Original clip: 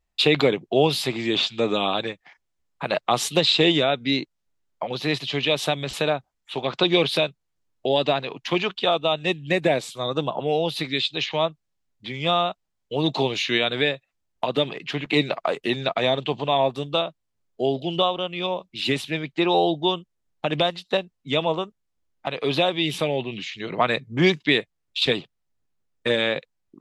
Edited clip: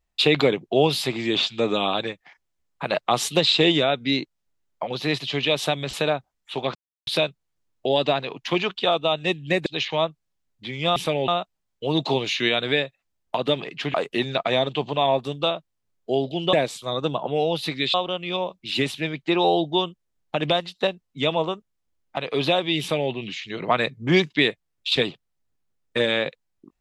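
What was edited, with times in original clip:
0:06.75–0:07.07: silence
0:09.66–0:11.07: move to 0:18.04
0:15.03–0:15.45: remove
0:22.90–0:23.22: duplicate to 0:12.37

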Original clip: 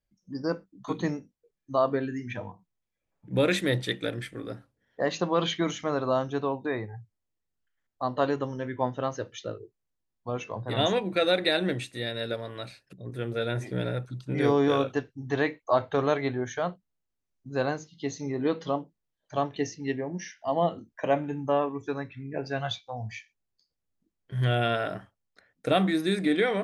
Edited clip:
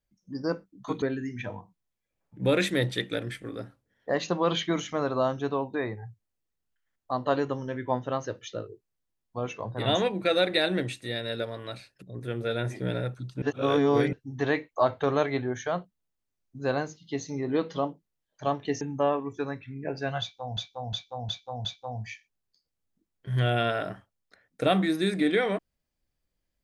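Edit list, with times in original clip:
0:01.02–0:01.93: remove
0:14.33–0:15.04: reverse
0:19.72–0:21.30: remove
0:22.70–0:23.06: repeat, 5 plays

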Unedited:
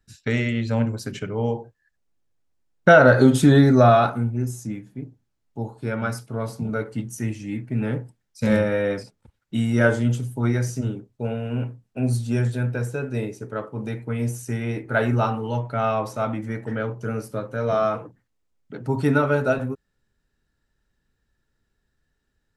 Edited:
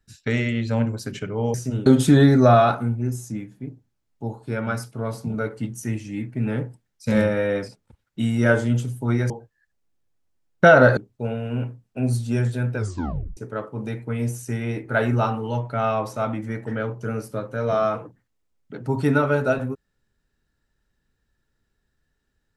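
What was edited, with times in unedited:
0:01.54–0:03.21: swap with 0:10.65–0:10.97
0:12.77: tape stop 0.60 s

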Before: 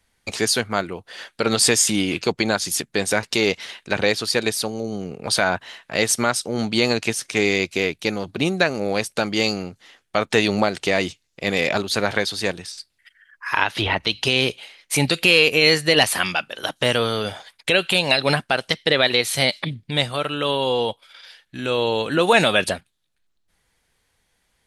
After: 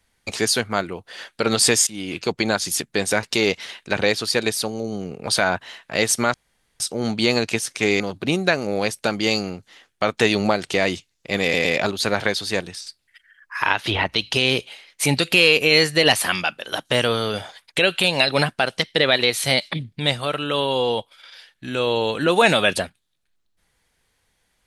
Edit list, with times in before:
0:01.87–0:02.60: fade in equal-power, from −22 dB
0:06.34: splice in room tone 0.46 s
0:07.54–0:08.13: remove
0:11.56: stutter 0.11 s, 3 plays

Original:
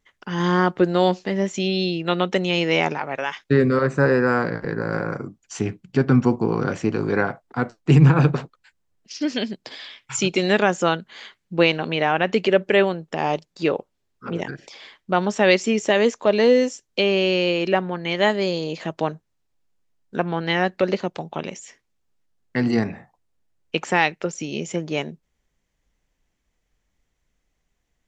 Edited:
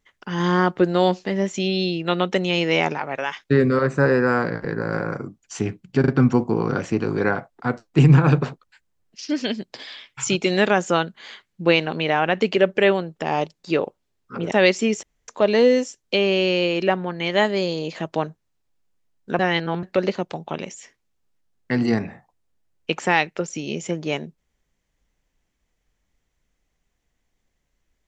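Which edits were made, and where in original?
0:06.00: stutter 0.04 s, 3 plays
0:14.44–0:15.37: remove
0:15.88–0:16.13: fill with room tone
0:20.24–0:20.68: reverse

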